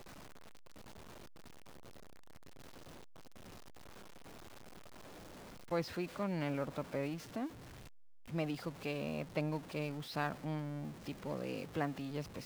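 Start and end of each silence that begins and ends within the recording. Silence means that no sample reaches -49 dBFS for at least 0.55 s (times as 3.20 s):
7.49–8.29 s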